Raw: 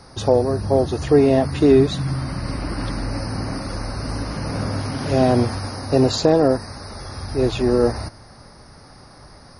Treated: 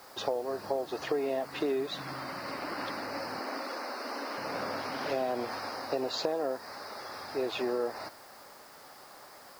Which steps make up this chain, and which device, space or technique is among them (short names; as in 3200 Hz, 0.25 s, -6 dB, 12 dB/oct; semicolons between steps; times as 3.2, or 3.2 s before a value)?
3.39–4.38 steep high-pass 210 Hz 96 dB/oct; baby monitor (BPF 480–4100 Hz; compressor, threshold -25 dBFS, peak gain reduction 11.5 dB; white noise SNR 23 dB); gain -3 dB